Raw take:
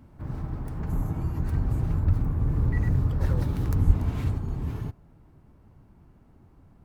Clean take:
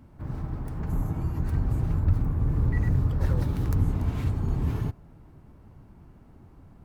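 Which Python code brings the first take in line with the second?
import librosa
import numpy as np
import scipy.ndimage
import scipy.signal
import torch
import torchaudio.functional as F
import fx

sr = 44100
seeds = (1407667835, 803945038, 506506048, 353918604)

y = fx.highpass(x, sr, hz=140.0, slope=24, at=(3.86, 3.98), fade=0.02)
y = fx.fix_level(y, sr, at_s=4.38, step_db=4.0)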